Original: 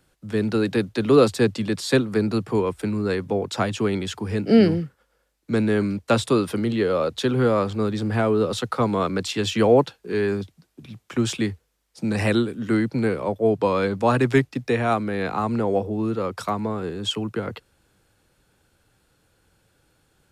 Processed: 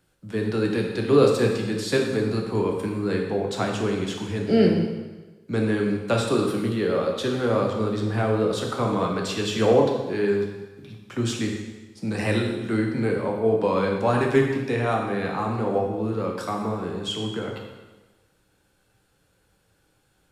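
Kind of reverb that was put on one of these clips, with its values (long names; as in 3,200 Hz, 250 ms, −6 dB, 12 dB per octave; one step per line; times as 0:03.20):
dense smooth reverb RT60 1.2 s, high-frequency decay 0.95×, DRR 0 dB
level −4.5 dB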